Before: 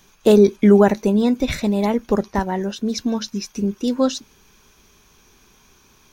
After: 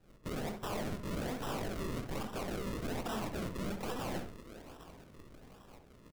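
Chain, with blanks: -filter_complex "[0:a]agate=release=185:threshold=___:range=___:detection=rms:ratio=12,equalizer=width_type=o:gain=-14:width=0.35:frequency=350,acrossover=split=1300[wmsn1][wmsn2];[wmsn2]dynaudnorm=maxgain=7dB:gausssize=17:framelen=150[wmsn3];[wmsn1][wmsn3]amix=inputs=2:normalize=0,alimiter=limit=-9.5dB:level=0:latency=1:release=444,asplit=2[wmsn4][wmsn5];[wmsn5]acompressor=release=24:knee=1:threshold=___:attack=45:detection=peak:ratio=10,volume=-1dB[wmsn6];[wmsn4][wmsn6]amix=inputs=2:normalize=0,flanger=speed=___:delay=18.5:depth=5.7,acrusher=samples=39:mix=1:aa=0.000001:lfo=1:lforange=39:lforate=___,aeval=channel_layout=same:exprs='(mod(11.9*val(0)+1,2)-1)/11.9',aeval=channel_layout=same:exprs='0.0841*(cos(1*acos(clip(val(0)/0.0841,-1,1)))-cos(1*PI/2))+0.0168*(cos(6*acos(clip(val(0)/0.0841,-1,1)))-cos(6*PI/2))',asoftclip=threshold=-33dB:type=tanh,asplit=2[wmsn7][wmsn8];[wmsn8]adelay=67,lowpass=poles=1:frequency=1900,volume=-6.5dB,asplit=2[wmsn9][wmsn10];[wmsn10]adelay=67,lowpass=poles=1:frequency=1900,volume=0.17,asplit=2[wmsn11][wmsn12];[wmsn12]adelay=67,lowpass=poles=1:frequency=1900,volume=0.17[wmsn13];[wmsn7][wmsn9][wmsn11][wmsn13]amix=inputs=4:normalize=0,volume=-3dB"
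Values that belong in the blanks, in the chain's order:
-51dB, -11dB, -33dB, 0.76, 1.2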